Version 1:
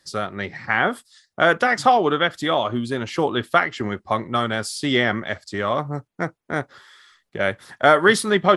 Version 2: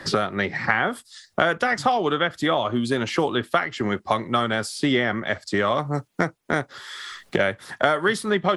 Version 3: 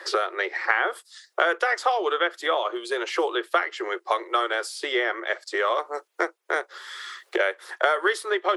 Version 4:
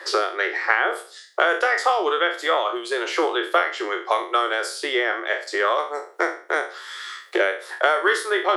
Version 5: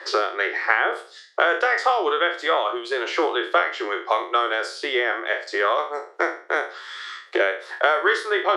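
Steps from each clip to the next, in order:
three-band squash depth 100%; gain -2.5 dB
rippled Chebyshev high-pass 340 Hz, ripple 3 dB
spectral trails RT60 0.41 s; gain +1.5 dB
BPF 200–5400 Hz

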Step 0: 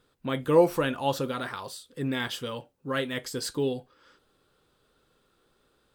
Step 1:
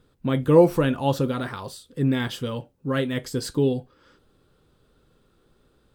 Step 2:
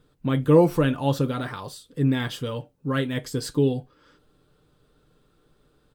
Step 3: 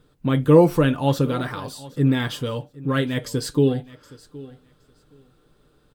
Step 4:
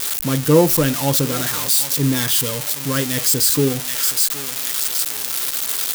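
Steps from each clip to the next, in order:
low shelf 360 Hz +12 dB
comb 6.7 ms, depth 34%; gain -1 dB
feedback echo 0.769 s, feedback 17%, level -20 dB; gain +3 dB
switching spikes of -9.5 dBFS

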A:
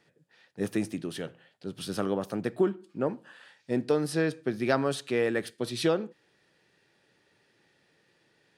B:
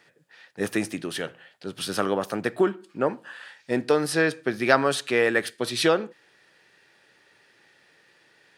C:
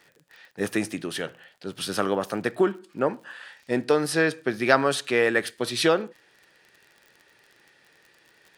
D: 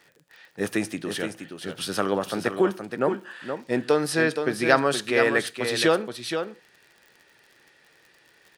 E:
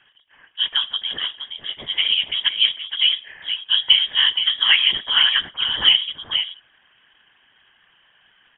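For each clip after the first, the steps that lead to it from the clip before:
EQ curve 180 Hz 0 dB, 1700 Hz +11 dB, 3500 Hz +8 dB
crackle 37/s -40 dBFS
echo 0.472 s -7.5 dB
ten-band EQ 250 Hz +12 dB, 500 Hz +9 dB, 1000 Hz +5 dB, 2000 Hz +5 dB; inverted band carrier 3500 Hz; whisperiser; gain -6 dB

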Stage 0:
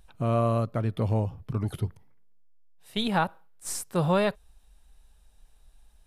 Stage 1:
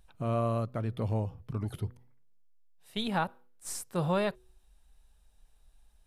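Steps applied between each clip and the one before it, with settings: de-hum 123.5 Hz, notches 4; gain -5 dB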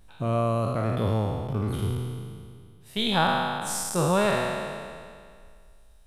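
spectral trails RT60 2.06 s; gain +4 dB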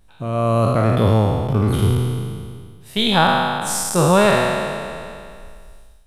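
AGC gain up to 12 dB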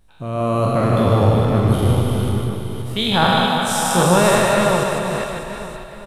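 reverse delay 0.403 s, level -4.5 dB; on a send: reverse bouncing-ball echo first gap 0.15 s, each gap 1.3×, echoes 5; on the sum: gain -2 dB

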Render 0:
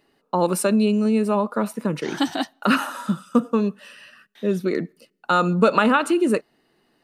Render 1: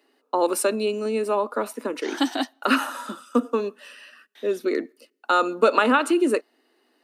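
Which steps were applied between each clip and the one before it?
Chebyshev high-pass 250 Hz, order 5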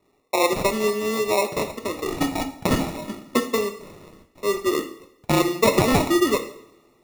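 sample-and-hold 28×; two-slope reverb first 0.63 s, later 2.4 s, from -26 dB, DRR 6.5 dB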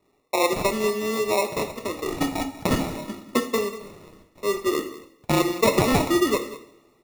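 echo 0.191 s -16 dB; gain -1.5 dB

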